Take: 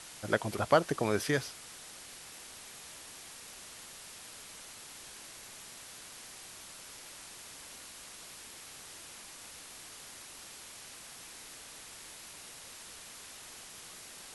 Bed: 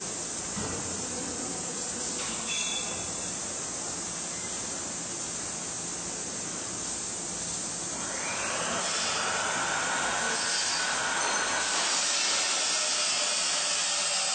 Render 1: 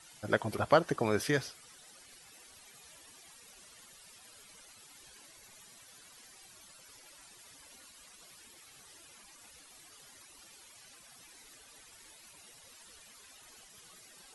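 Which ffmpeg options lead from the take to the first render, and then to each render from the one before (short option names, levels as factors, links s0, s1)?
-af "afftdn=nr=14:nf=-50"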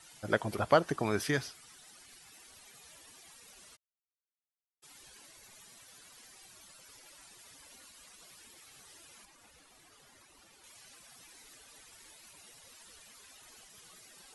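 -filter_complex "[0:a]asettb=1/sr,asplit=3[s0][s1][s2];[s0]atrim=end=0.884[s3];[s1]atrim=start=0.88:end=2.48,asetpts=PTS-STARTPTS,afade=t=in:d=0.004:c=qsin,afade=t=out:st=1.596:d=0.004:c=qsin,equalizer=f=520:t=o:w=0.34:g=-7.5[s4];[s2]atrim=start=2.476[s5];[s3][s4]acrossfade=d=0.004:c1=hsin:c2=qsin[s6];[s6][s5]acrossfade=d=0.004:c1=qsin:c2=hsin,asplit=3[s7][s8][s9];[s7]afade=t=out:st=3.75:d=0.02[s10];[s8]acrusher=bits=3:mix=0:aa=0.5,afade=t=in:st=3.75:d=0.02,afade=t=out:st=4.82:d=0.02[s11];[s9]afade=t=in:st=4.82:d=0.02[s12];[s10][s11][s12]amix=inputs=3:normalize=0,asettb=1/sr,asplit=3[s13][s14][s15];[s13]atrim=end=9.254[s16];[s14]atrim=start=9.25:end=10.64,asetpts=PTS-STARTPTS,afade=t=in:d=0.004:c=qsin,afade=t=out:st=1.386:d=0.004:c=qsin,highshelf=f=2600:g=-7.5[s17];[s15]atrim=start=10.636[s18];[s16][s17]acrossfade=d=0.004:c1=hsin:c2=qsin[s19];[s19][s18]acrossfade=d=0.004:c1=qsin:c2=hsin"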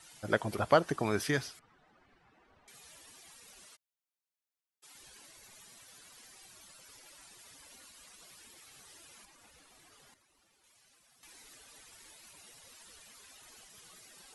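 -filter_complex "[0:a]asettb=1/sr,asplit=3[s0][s1][s2];[s0]atrim=end=1.594[s3];[s1]atrim=start=1.59:end=2.68,asetpts=PTS-STARTPTS,afade=t=in:d=0.004:c=qsin,afade=t=out:st=1.086:d=0.004:c=qsin,lowpass=1300[s4];[s2]atrim=start=2.676[s5];[s3][s4]acrossfade=d=0.004:c1=hsin:c2=qsin[s6];[s6][s5]acrossfade=d=0.004:c1=qsin:c2=hsin,asettb=1/sr,asplit=3[s7][s8][s9];[s7]atrim=end=3.664[s10];[s8]atrim=start=3.66:end=4.95,asetpts=PTS-STARTPTS,afade=t=in:d=0.004:c=qsin,afade=t=out:st=1.286:d=0.004:c=qsin,highpass=f=380:p=1[s11];[s9]atrim=start=4.946[s12];[s10][s11]acrossfade=d=0.004:c1=hsin:c2=qsin[s13];[s13][s12]acrossfade=d=0.004:c1=qsin:c2=hsin,asplit=3[s14][s15][s16];[s14]atrim=end=10.142[s17];[s15]atrim=start=10.138:end=11.232,asetpts=PTS-STARTPTS,volume=0.299[s18];[s16]atrim=start=11.228[s19];[s17][s18]acrossfade=d=0.004:c1=hsin:c2=hsin[s20];[s20][s19]acrossfade=d=0.004:c1=hsin:c2=hsin"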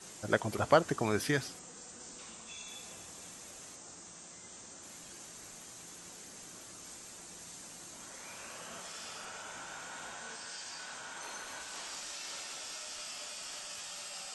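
-filter_complex "[1:a]volume=0.15[s0];[0:a][s0]amix=inputs=2:normalize=0"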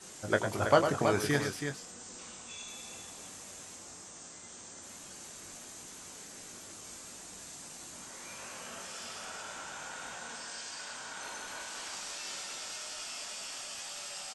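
-filter_complex "[0:a]asplit=2[s0][s1];[s1]adelay=21,volume=0.398[s2];[s0][s2]amix=inputs=2:normalize=0,aecho=1:1:102|325:0.398|0.447"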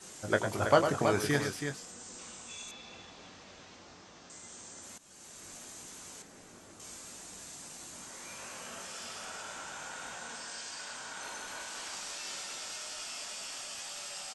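-filter_complex "[0:a]asettb=1/sr,asplit=3[s0][s1][s2];[s0]atrim=end=2.714[s3];[s1]atrim=start=2.71:end=4.3,asetpts=PTS-STARTPTS,afade=t=in:d=0.004:c=qsin,afade=t=out:st=1.586:d=0.004:c=qsin,lowpass=f=4800:w=0.5412,lowpass=f=4800:w=1.3066[s4];[s2]atrim=start=4.296[s5];[s3][s4]acrossfade=d=0.004:c1=hsin:c2=qsin[s6];[s6][s5]acrossfade=d=0.004:c1=qsin:c2=hsin,asettb=1/sr,asplit=3[s7][s8][s9];[s7]atrim=end=6.224[s10];[s8]atrim=start=6.22:end=6.8,asetpts=PTS-STARTPTS,afade=t=in:d=0.004:c=qsin,afade=t=out:st=0.576:d=0.004:c=qsin,highshelf=f=2300:g=-10.5[s11];[s9]atrim=start=6.796[s12];[s10][s11]acrossfade=d=0.004:c1=hsin:c2=qsin[s13];[s13][s12]acrossfade=d=0.004:c1=qsin:c2=hsin,asplit=2[s14][s15];[s14]atrim=end=4.98,asetpts=PTS-STARTPTS,afade=t=out:st=4.976:d=0.004:c=hsin:silence=0.16788[s16];[s15]atrim=start=4.98,asetpts=PTS-STARTPTS,afade=t=in:d=0.72:c=qsin:silence=0.16788[s17];[s16][s17]concat=n=2:v=0:a=1"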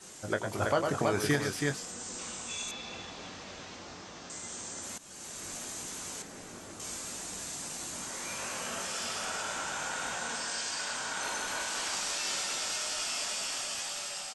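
-af "dynaudnorm=f=510:g=5:m=2.37,alimiter=limit=0.168:level=0:latency=1:release=256"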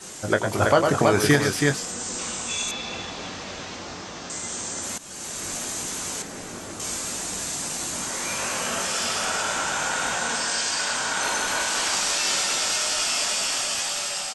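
-af "volume=3.16"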